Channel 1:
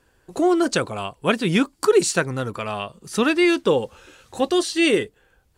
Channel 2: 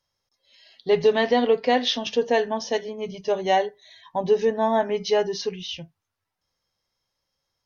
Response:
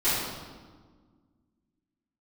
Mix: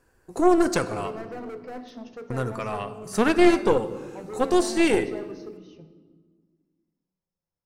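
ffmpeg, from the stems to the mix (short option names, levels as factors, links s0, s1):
-filter_complex "[0:a]volume=0.708,asplit=3[s0][s1][s2];[s0]atrim=end=1.1,asetpts=PTS-STARTPTS,afade=t=out:st=1.096:d=0.004:c=hsin[s3];[s1]atrim=start=1.1:end=2.3,asetpts=PTS-STARTPTS,volume=0[s4];[s2]atrim=start=2.3,asetpts=PTS-STARTPTS,afade=t=in:d=0.004:c=hsin[s5];[s3][s4][s5]concat=n=3:v=0:a=1,asplit=2[s6][s7];[s7]volume=0.0708[s8];[1:a]tiltshelf=f=1100:g=7,bandreject=f=60:t=h:w=6,bandreject=f=120:t=h:w=6,bandreject=f=180:t=h:w=6,bandreject=f=240:t=h:w=6,bandreject=f=300:t=h:w=6,bandreject=f=360:t=h:w=6,bandreject=f=420:t=h:w=6,volume=9.44,asoftclip=hard,volume=0.106,volume=0.158,asplit=2[s9][s10];[s10]volume=0.0841[s11];[2:a]atrim=start_sample=2205[s12];[s8][s11]amix=inputs=2:normalize=0[s13];[s13][s12]afir=irnorm=-1:irlink=0[s14];[s6][s9][s14]amix=inputs=3:normalize=0,equalizer=f=3300:t=o:w=0.62:g=-10.5,aeval=exprs='0.398*(cos(1*acos(clip(val(0)/0.398,-1,1)))-cos(1*PI/2))+0.1*(cos(4*acos(clip(val(0)/0.398,-1,1)))-cos(4*PI/2))+0.0251*(cos(6*acos(clip(val(0)/0.398,-1,1)))-cos(6*PI/2))':c=same"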